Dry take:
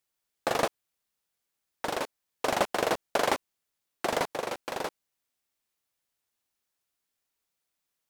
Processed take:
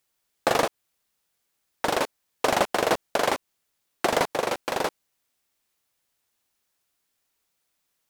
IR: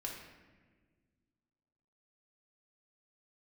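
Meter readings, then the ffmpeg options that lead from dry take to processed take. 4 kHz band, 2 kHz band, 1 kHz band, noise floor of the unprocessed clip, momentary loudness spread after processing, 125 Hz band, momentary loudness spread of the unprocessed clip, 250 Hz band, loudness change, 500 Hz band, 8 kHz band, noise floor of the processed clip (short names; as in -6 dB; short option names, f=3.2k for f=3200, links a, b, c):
+5.0 dB, +5.0 dB, +5.0 dB, -84 dBFS, 7 LU, +5.0 dB, 8 LU, +5.0 dB, +5.0 dB, +5.0 dB, +5.0 dB, -77 dBFS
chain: -af "alimiter=limit=-16dB:level=0:latency=1:release=180,volume=7dB"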